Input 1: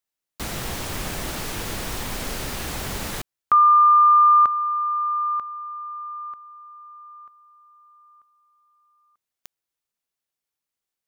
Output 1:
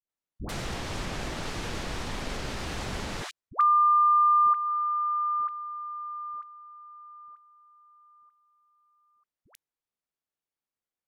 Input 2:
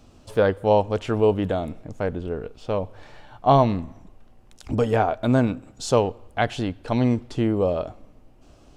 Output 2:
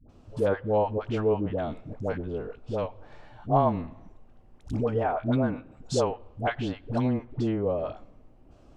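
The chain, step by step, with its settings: in parallel at -2 dB: compression, threshold -26 dBFS; on the sum: low-pass that closes with the level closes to 1.8 kHz, closed at -14 dBFS; phase dispersion highs, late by 95 ms, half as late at 590 Hz; tape noise reduction on one side only decoder only; trim -7.5 dB

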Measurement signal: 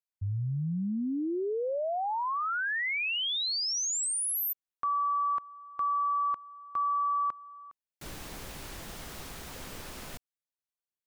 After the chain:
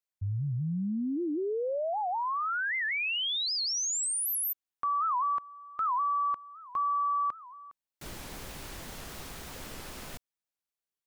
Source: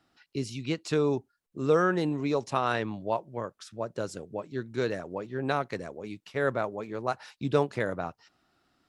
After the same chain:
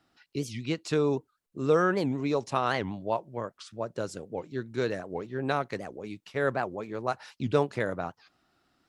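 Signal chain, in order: warped record 78 rpm, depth 250 cents

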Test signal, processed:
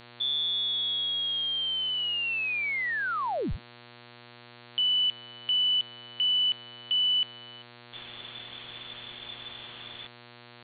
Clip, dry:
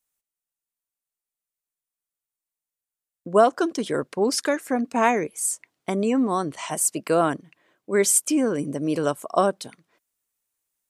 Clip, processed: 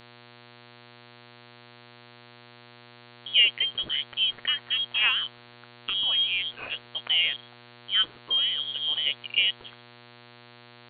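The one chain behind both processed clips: frequency inversion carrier 3.5 kHz; mains buzz 120 Hz, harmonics 37, -47 dBFS -2 dB/octave; trim -4 dB

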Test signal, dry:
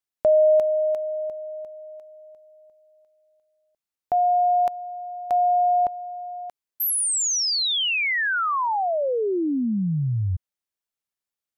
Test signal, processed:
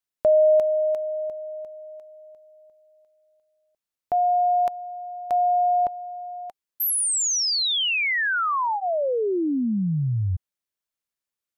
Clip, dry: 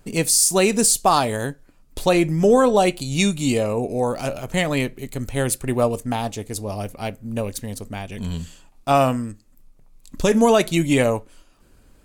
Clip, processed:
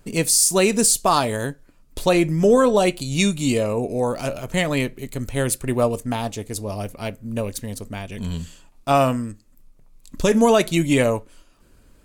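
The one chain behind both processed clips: band-stop 780 Hz, Q 12

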